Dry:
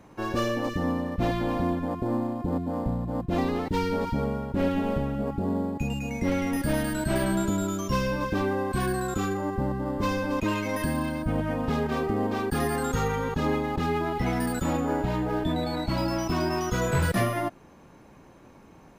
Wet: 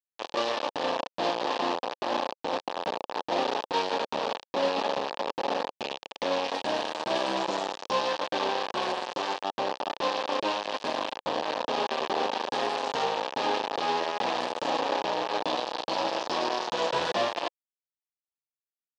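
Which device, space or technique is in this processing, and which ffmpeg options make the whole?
hand-held game console: -af "acrusher=bits=3:mix=0:aa=0.000001,highpass=470,equalizer=frequency=530:width_type=q:width=4:gain=4,equalizer=frequency=870:width_type=q:width=4:gain=5,equalizer=frequency=1400:width_type=q:width=4:gain=-9,equalizer=frequency=2100:width_type=q:width=4:gain=-10,lowpass=frequency=4600:width=0.5412,lowpass=frequency=4600:width=1.3066"

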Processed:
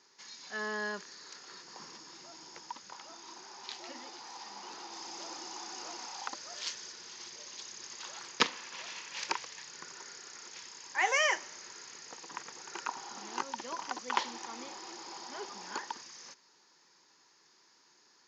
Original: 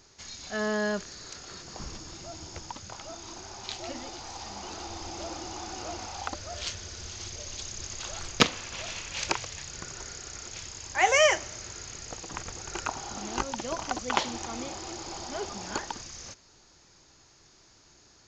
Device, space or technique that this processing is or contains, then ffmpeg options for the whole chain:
television speaker: -filter_complex "[0:a]asettb=1/sr,asplit=3[link_01][link_02][link_03];[link_01]atrim=end=4.924[link_04];[link_02]atrim=start=4.92:end=6.92,asetpts=PTS-STARTPTS,afade=type=in:duration=0.004:curve=qsin,afade=type=out:start_time=1.996:duration=0.004:curve=qsin,highshelf=frequency=6000:gain=8.5[link_05];[link_03]atrim=start=6.916[link_06];[link_04][link_05]acrossfade=duration=0.004:curve1=hsin:curve2=qsin[link_07];[link_07][link_06]acrossfade=duration=0.004:curve1=qsin:curve2=hsin,highpass=frequency=200:width=0.5412,highpass=frequency=200:width=1.3066,equalizer=frequency=210:width_type=q:width=4:gain=-4,equalizer=frequency=300:width_type=q:width=4:gain=-4,equalizer=frequency=650:width_type=q:width=4:gain=-8,equalizer=frequency=970:width_type=q:width=4:gain=7,equalizer=frequency=1800:width_type=q:width=4:gain=5,equalizer=frequency=5000:width_type=q:width=4:gain=3,lowpass=frequency=7100:width=0.5412,lowpass=frequency=7100:width=1.3066,volume=-7dB"

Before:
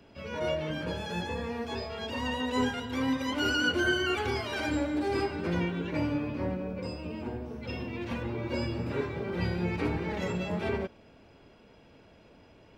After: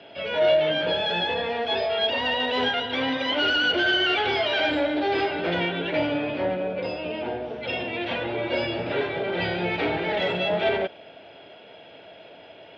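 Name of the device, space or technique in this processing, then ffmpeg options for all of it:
overdrive pedal into a guitar cabinet: -filter_complex "[0:a]asplit=2[link_01][link_02];[link_02]highpass=frequency=720:poles=1,volume=19dB,asoftclip=type=tanh:threshold=-14.5dB[link_03];[link_01][link_03]amix=inputs=2:normalize=0,lowpass=frequency=3700:poles=1,volume=-6dB,highpass=91,equalizer=frequency=230:width_type=q:width=4:gain=-6,equalizer=frequency=660:width_type=q:width=4:gain=8,equalizer=frequency=1100:width_type=q:width=4:gain=-9,equalizer=frequency=3300:width_type=q:width=4:gain=8,lowpass=frequency=4300:width=0.5412,lowpass=frequency=4300:width=1.3066"

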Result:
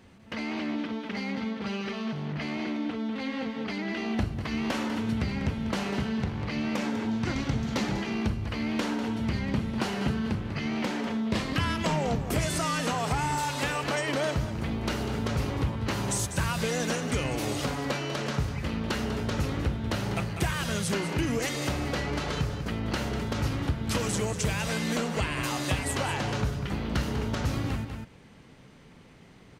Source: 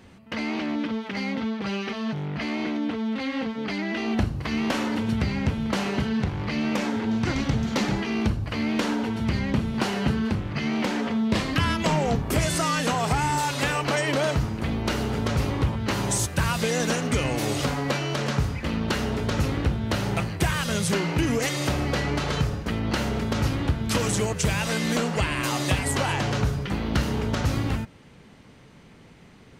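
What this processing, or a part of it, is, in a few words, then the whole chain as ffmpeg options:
ducked delay: -filter_complex "[0:a]asplit=3[link_01][link_02][link_03];[link_02]adelay=196,volume=-2dB[link_04];[link_03]apad=whole_len=1313970[link_05];[link_04][link_05]sidechaincompress=threshold=-32dB:ratio=8:attack=33:release=411[link_06];[link_01][link_06]amix=inputs=2:normalize=0,volume=-4.5dB"

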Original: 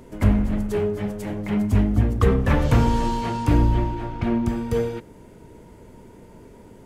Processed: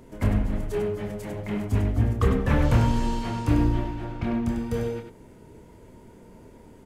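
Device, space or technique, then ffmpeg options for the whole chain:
slapback doubling: -filter_complex "[0:a]asplit=3[link_01][link_02][link_03];[link_02]adelay=27,volume=-6.5dB[link_04];[link_03]adelay=98,volume=-7dB[link_05];[link_01][link_04][link_05]amix=inputs=3:normalize=0,volume=-4.5dB"

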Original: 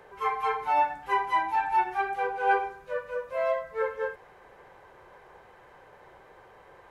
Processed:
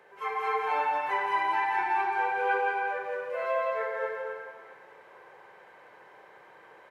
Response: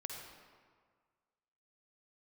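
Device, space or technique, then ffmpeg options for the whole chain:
stadium PA: -filter_complex "[0:a]highpass=190,equalizer=frequency=2200:width_type=o:width=1.3:gain=4.5,aecho=1:1:169.1|262.4:0.631|0.501[link_01];[1:a]atrim=start_sample=2205[link_02];[link_01][link_02]afir=irnorm=-1:irlink=0,volume=-2dB"

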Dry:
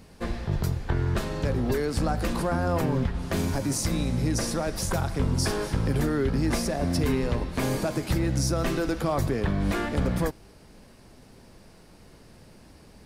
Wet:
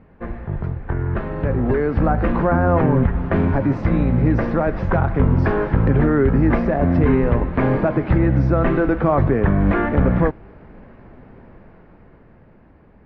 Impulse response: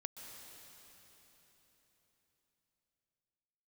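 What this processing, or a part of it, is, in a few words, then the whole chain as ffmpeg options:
action camera in a waterproof case: -af "lowpass=frequency=2000:width=0.5412,lowpass=frequency=2000:width=1.3066,dynaudnorm=framelen=180:gausssize=17:maxgain=8dB,volume=1.5dB" -ar 44100 -c:a aac -b:a 64k

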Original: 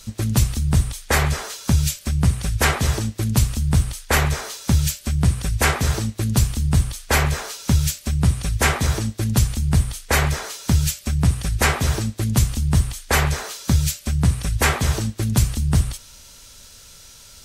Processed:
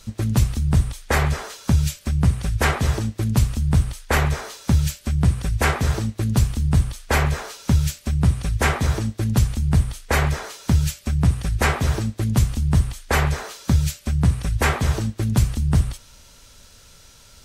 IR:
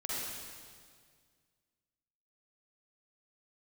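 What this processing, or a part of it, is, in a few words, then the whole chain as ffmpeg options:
behind a face mask: -af "highshelf=frequency=3100:gain=-7.5"

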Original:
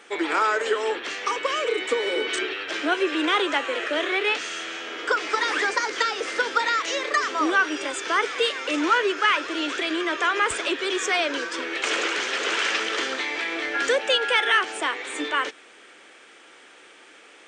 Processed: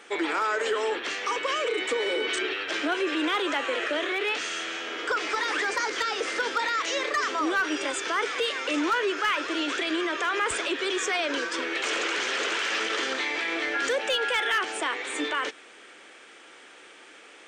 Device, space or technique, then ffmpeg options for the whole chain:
clipper into limiter: -af "asoftclip=type=hard:threshold=-14dB,alimiter=limit=-19dB:level=0:latency=1:release=26"

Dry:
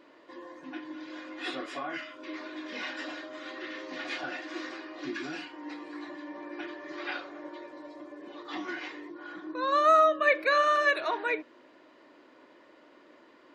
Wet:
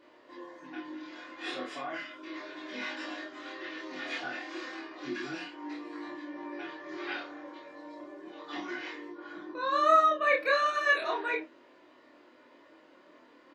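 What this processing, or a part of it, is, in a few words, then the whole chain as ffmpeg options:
double-tracked vocal: -filter_complex "[0:a]asplit=2[link_01][link_02];[link_02]adelay=28,volume=-2.5dB[link_03];[link_01][link_03]amix=inputs=2:normalize=0,flanger=delay=19.5:depth=4.8:speed=0.33"

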